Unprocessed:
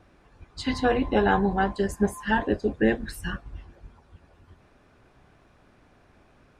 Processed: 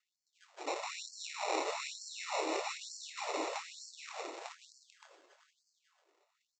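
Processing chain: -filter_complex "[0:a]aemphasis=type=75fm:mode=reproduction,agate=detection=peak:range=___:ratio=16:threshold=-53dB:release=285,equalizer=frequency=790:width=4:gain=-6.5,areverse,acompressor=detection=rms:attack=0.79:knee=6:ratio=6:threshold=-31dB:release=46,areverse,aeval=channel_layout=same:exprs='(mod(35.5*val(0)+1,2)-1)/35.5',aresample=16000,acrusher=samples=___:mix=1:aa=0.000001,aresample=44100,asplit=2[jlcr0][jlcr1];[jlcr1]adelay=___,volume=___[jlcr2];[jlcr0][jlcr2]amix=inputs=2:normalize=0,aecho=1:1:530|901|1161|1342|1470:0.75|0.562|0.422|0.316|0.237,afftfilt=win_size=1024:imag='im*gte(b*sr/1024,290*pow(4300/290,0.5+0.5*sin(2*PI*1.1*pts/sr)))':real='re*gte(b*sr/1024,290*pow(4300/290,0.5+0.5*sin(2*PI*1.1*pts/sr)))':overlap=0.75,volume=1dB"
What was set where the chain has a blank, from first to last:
-18dB, 10, 25, -8.5dB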